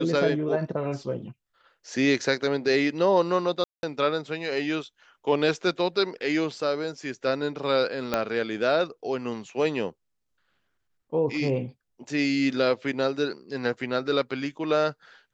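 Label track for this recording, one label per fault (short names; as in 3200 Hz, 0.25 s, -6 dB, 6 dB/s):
3.640000	3.830000	gap 0.191 s
8.140000	8.140000	pop -10 dBFS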